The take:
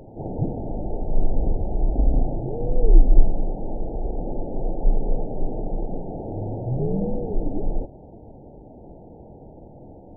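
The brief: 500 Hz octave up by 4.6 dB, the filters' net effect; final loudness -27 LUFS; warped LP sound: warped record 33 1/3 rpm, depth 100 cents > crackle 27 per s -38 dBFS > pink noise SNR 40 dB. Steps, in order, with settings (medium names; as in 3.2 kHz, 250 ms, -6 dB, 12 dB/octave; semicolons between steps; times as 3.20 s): peaking EQ 500 Hz +5.5 dB; warped record 33 1/3 rpm, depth 100 cents; crackle 27 per s -38 dBFS; pink noise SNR 40 dB; trim -1 dB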